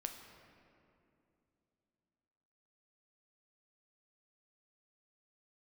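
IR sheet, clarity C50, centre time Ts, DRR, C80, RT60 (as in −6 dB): 6.5 dB, 46 ms, 4.0 dB, 7.5 dB, 2.7 s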